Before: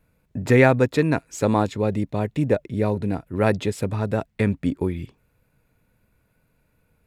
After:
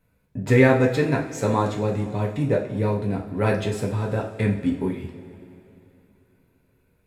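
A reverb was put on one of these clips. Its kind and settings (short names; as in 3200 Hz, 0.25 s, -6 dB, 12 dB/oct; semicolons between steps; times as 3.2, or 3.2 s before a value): two-slope reverb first 0.41 s, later 3.3 s, from -18 dB, DRR -1.5 dB; gain -4.5 dB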